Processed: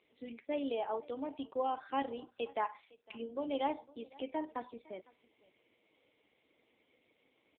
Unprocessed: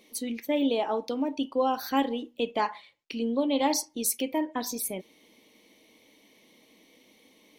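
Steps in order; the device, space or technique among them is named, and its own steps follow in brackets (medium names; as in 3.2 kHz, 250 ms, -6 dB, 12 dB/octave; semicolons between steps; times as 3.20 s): satellite phone (band-pass 350–3400 Hz; delay 507 ms -23 dB; trim -6.5 dB; AMR-NB 5.9 kbps 8 kHz)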